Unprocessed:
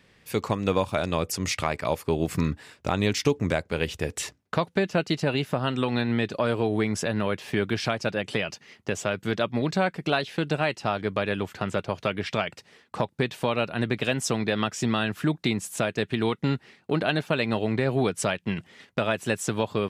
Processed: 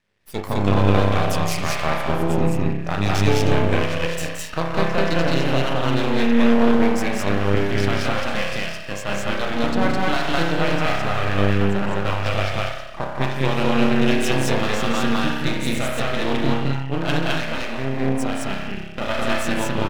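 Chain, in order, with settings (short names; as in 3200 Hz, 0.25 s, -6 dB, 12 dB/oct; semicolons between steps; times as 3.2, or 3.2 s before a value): spring tank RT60 1.5 s, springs 30 ms, chirp 75 ms, DRR -2.5 dB; 17.17–19.01 compressor 1.5:1, threshold -28 dBFS, peak gain reduction 5 dB; spectral noise reduction 14 dB; half-wave rectifier; on a send: loudspeakers at several distances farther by 59 m -7 dB, 72 m 0 dB; on the sum: gain +2 dB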